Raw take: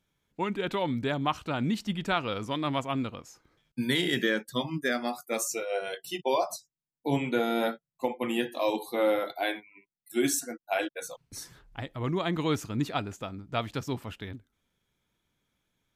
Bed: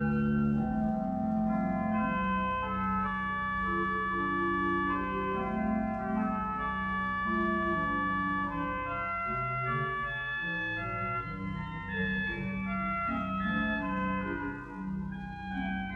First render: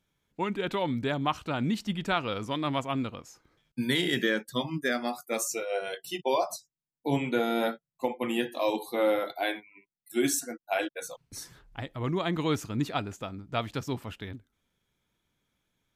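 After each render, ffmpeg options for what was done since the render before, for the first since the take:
ffmpeg -i in.wav -af anull out.wav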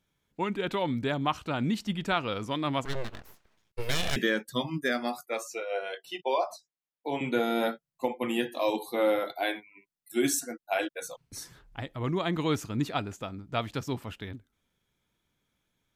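ffmpeg -i in.wav -filter_complex "[0:a]asettb=1/sr,asplit=3[link_01][link_02][link_03];[link_01]atrim=end=2.854[link_04];[link_02]atrim=start=2.85:end=4.16,asetpts=PTS-STARTPTS,afade=type=in:duration=0.004:curve=qsin,afade=type=out:start_time=1.306:duration=0.004:curve=qsin,aeval=exprs='abs(val(0))':channel_layout=same[link_05];[link_03]atrim=start=4.156[link_06];[link_04][link_05]acrossfade=duration=0.004:curve1=hsin:curve2=qsin[link_07];[link_07][link_06]acrossfade=duration=0.004:curve1=qsin:curve2=hsin,asettb=1/sr,asplit=3[link_08][link_09][link_10];[link_08]atrim=end=5.264[link_11];[link_09]atrim=start=5.26:end=7.21,asetpts=PTS-STARTPTS,afade=type=in:duration=0.004:curve=qsin,afade=type=out:start_time=1.946:duration=0.004:curve=qsin,acrossover=split=350 4100:gain=0.178 1 0.224[link_12][link_13][link_14];[link_12][link_13][link_14]amix=inputs=3:normalize=0[link_15];[link_10]atrim=start=7.206[link_16];[link_11][link_15]acrossfade=duration=0.004:curve1=hsin:curve2=qsin[link_17];[link_17][link_16]acrossfade=duration=0.004:curve1=qsin:curve2=hsin" out.wav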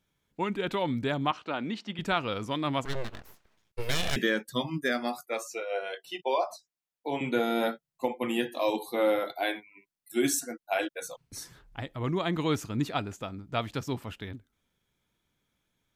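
ffmpeg -i in.wav -filter_complex "[0:a]asettb=1/sr,asplit=3[link_01][link_02][link_03];[link_01]atrim=end=1.314[link_04];[link_02]atrim=start=1.31:end=1.99,asetpts=PTS-STARTPTS,afade=type=in:duration=0.004:curve=qsin,afade=type=out:start_time=0.676:duration=0.004:curve=qsin,highpass=290,lowpass=4200[link_05];[link_03]atrim=start=1.986[link_06];[link_04][link_05]acrossfade=duration=0.004:curve1=hsin:curve2=qsin[link_07];[link_07][link_06]acrossfade=duration=0.004:curve1=qsin:curve2=hsin" out.wav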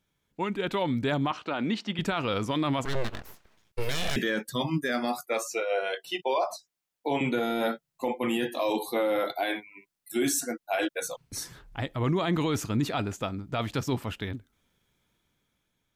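ffmpeg -i in.wav -af "dynaudnorm=framelen=420:gausssize=5:maxgain=5.5dB,alimiter=limit=-18.5dB:level=0:latency=1:release=13" out.wav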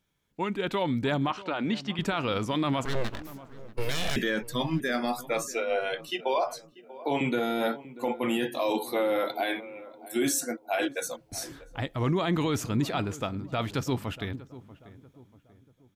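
ffmpeg -i in.wav -filter_complex "[0:a]asplit=2[link_01][link_02];[link_02]adelay=639,lowpass=frequency=1200:poles=1,volume=-16.5dB,asplit=2[link_03][link_04];[link_04]adelay=639,lowpass=frequency=1200:poles=1,volume=0.44,asplit=2[link_05][link_06];[link_06]adelay=639,lowpass=frequency=1200:poles=1,volume=0.44,asplit=2[link_07][link_08];[link_08]adelay=639,lowpass=frequency=1200:poles=1,volume=0.44[link_09];[link_01][link_03][link_05][link_07][link_09]amix=inputs=5:normalize=0" out.wav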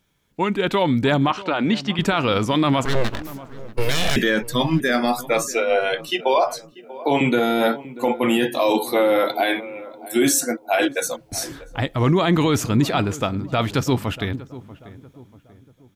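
ffmpeg -i in.wav -af "volume=9dB" out.wav

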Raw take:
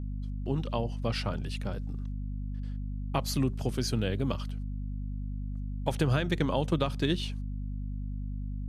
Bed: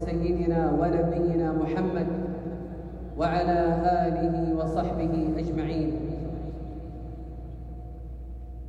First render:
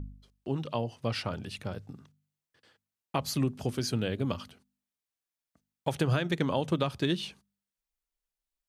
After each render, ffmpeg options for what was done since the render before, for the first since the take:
ffmpeg -i in.wav -af "bandreject=frequency=50:width_type=h:width=4,bandreject=frequency=100:width_type=h:width=4,bandreject=frequency=150:width_type=h:width=4,bandreject=frequency=200:width_type=h:width=4,bandreject=frequency=250:width_type=h:width=4" out.wav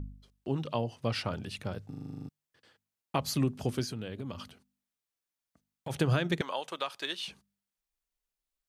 ffmpeg -i in.wav -filter_complex "[0:a]asplit=3[link_01][link_02][link_03];[link_01]afade=type=out:start_time=3.83:duration=0.02[link_04];[link_02]acompressor=threshold=-35dB:ratio=5:attack=3.2:release=140:knee=1:detection=peak,afade=type=in:start_time=3.83:duration=0.02,afade=type=out:start_time=5.89:duration=0.02[link_05];[link_03]afade=type=in:start_time=5.89:duration=0.02[link_06];[link_04][link_05][link_06]amix=inputs=3:normalize=0,asettb=1/sr,asplit=3[link_07][link_08][link_09];[link_07]atrim=end=6.414[link_10];[link_08]atrim=start=6.41:end=7.28,asetpts=PTS-STARTPTS,afade=type=in:duration=0.004:curve=qsin,afade=type=out:start_time=0.866:duration=0.004:curve=qsin,highpass=780[link_11];[link_09]atrim=start=7.276[link_12];[link_10][link_11]acrossfade=duration=0.004:curve1=hsin:curve2=qsin[link_13];[link_13][link_12]acrossfade=duration=0.004:curve1=qsin:curve2=hsin,asplit=11[link_14][link_15][link_16][link_17][link_18][link_19][link_20][link_21][link_22][link_23][link_24];[link_14]atrim=end=1.932[link_25];[link_15]atrim=start=1.888:end=1.932[link_26];[link_16]atrim=start=1.888:end=1.932[link_27];[link_17]atrim=start=1.888:end=1.932[link_28];[link_18]atrim=start=1.888:end=1.932[link_29];[link_19]atrim=start=1.888:end=1.932[link_30];[link_20]atrim=start=1.888:end=1.932[link_31];[link_21]atrim=start=1.888:end=1.932[link_32];[link_22]atrim=start=1.888:end=1.932[link_33];[link_23]atrim=start=1.888:end=1.932[link_34];[link_24]atrim=start=2.288[link_35];[link_25][link_26]acrossfade=duration=0.004:curve1=hsin:curve2=hsin[link_36];[link_36][link_27]acrossfade=duration=0.004:curve1=hsin:curve2=hsin[link_37];[link_37][link_28]acrossfade=duration=0.004:curve1=hsin:curve2=hsin[link_38];[link_38][link_29]acrossfade=duration=0.004:curve1=hsin:curve2=hsin[link_39];[link_39][link_30]acrossfade=duration=0.004:curve1=hsin:curve2=hsin[link_40];[link_40][link_31]acrossfade=duration=0.004:curve1=hsin:curve2=hsin[link_41];[link_41][link_32]acrossfade=duration=0.004:curve1=hsin:curve2=hsin[link_42];[link_42][link_33]acrossfade=duration=0.004:curve1=hsin:curve2=hsin[link_43];[link_43][link_34]acrossfade=duration=0.004:curve1=hsin:curve2=hsin[link_44];[link_44][link_35]acrossfade=duration=0.004:curve1=hsin:curve2=hsin" out.wav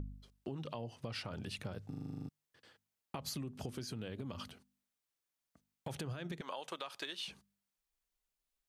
ffmpeg -i in.wav -af "alimiter=level_in=0.5dB:limit=-24dB:level=0:latency=1:release=99,volume=-0.5dB,acompressor=threshold=-39dB:ratio=6" out.wav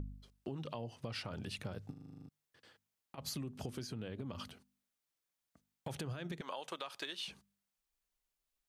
ffmpeg -i in.wav -filter_complex "[0:a]asettb=1/sr,asplit=3[link_01][link_02][link_03];[link_01]atrim=end=1.914[link_04];[link_02]atrim=start=1.91:end=3.18,asetpts=PTS-STARTPTS,afade=type=in:duration=0.004:curve=qsin,afade=type=out:start_time=1.266:duration=0.004:curve=qsin,acompressor=threshold=-49dB:ratio=6:attack=3.2:release=140:knee=1:detection=peak[link_05];[link_03]atrim=start=3.176[link_06];[link_04][link_05]acrossfade=duration=0.004:curve1=hsin:curve2=qsin[link_07];[link_07][link_06]acrossfade=duration=0.004:curve1=qsin:curve2=hsin,asettb=1/sr,asplit=3[link_08][link_09][link_10];[link_08]atrim=end=3.874[link_11];[link_09]atrim=start=3.87:end=4.35,asetpts=PTS-STARTPTS,afade=type=in:duration=0.004:curve=qsin,afade=type=out:start_time=0.476:duration=0.004:curve=qsin,highshelf=frequency=3800:gain=-6.5[link_12];[link_10]atrim=start=4.346[link_13];[link_11][link_12]acrossfade=duration=0.004:curve1=hsin:curve2=qsin[link_14];[link_14][link_13]acrossfade=duration=0.004:curve1=qsin:curve2=hsin" out.wav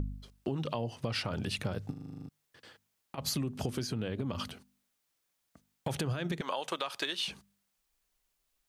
ffmpeg -i in.wav -af "volume=8.5dB" out.wav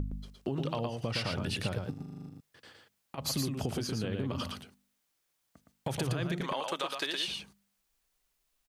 ffmpeg -i in.wav -af "aecho=1:1:115:0.596" out.wav

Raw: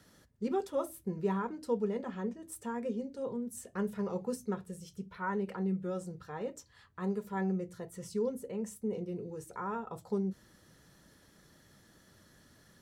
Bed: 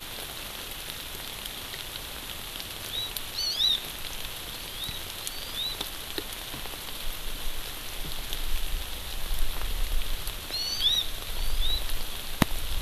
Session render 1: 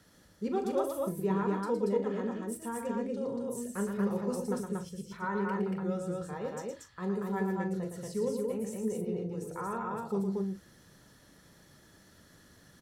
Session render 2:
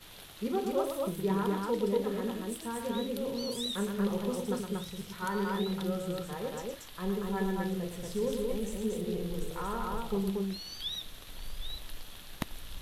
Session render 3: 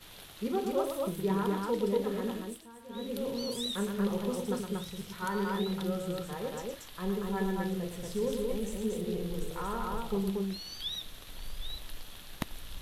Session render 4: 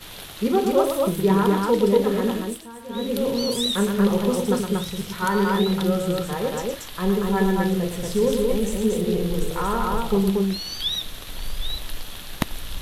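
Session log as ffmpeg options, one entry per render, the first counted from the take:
ffmpeg -i in.wav -filter_complex "[0:a]asplit=2[link_01][link_02];[link_02]adelay=40,volume=-11.5dB[link_03];[link_01][link_03]amix=inputs=2:normalize=0,aecho=1:1:113.7|233.2:0.501|0.794" out.wav
ffmpeg -i in.wav -i bed.wav -filter_complex "[1:a]volume=-13dB[link_01];[0:a][link_01]amix=inputs=2:normalize=0" out.wav
ffmpeg -i in.wav -filter_complex "[0:a]asplit=3[link_01][link_02][link_03];[link_01]atrim=end=2.67,asetpts=PTS-STARTPTS,afade=type=out:start_time=2.36:duration=0.31:silence=0.188365[link_04];[link_02]atrim=start=2.67:end=2.87,asetpts=PTS-STARTPTS,volume=-14.5dB[link_05];[link_03]atrim=start=2.87,asetpts=PTS-STARTPTS,afade=type=in:duration=0.31:silence=0.188365[link_06];[link_04][link_05][link_06]concat=n=3:v=0:a=1" out.wav
ffmpeg -i in.wav -af "volume=11.5dB" out.wav

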